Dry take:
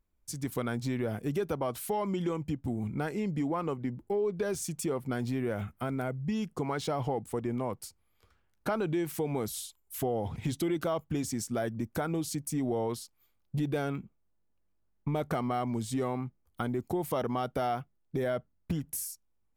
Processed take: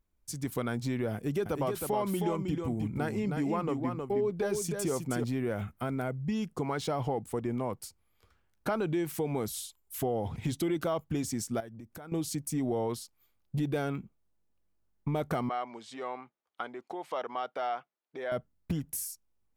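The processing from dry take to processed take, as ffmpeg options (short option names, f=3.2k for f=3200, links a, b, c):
-filter_complex "[0:a]asettb=1/sr,asplit=3[a][b][c];[a]atrim=end=1.144[d];[b]atrim=start=1.14:end=5.24,asetpts=PTS-STARTPTS,afade=t=in:d=0.004:c=qsin,afade=t=out:st=4.096:d=0.004:c=qsin,aecho=1:1:315:0.562,atrim=end_sample=180810[e];[c]atrim=start=5.236[f];[d][e]acrossfade=d=0.004:c1=hsin:c2=qsin[g];[g][f]acrossfade=d=0.004:c1=qsin:c2=hsin,asettb=1/sr,asplit=3[h][i][j];[h]atrim=end=11.604[k];[i]atrim=start=11.6:end=12.12,asetpts=PTS-STARTPTS,afade=t=in:d=0.004:c=qsin,afade=t=out:st=0.516:d=0.004:c=qsin,acompressor=threshold=-45dB:ratio=4:attack=3.2:release=140:knee=1:detection=peak[l];[j]atrim=start=12.116[m];[k][l]acrossfade=d=0.004:c1=hsin:c2=qsin[n];[n][m]acrossfade=d=0.004:c1=qsin:c2=hsin,asettb=1/sr,asplit=3[o][p][q];[o]atrim=end=15.494[r];[p]atrim=start=15.49:end=18.32,asetpts=PTS-STARTPTS,afade=t=in:d=0.004:c=qsin,afade=t=out:st=2.826:d=0.004:c=qsin,highpass=600,lowpass=4k[s];[q]atrim=start=18.316[t];[r][s]acrossfade=d=0.004:c1=hsin:c2=qsin[u];[u][t]acrossfade=d=0.004:c1=qsin:c2=hsin"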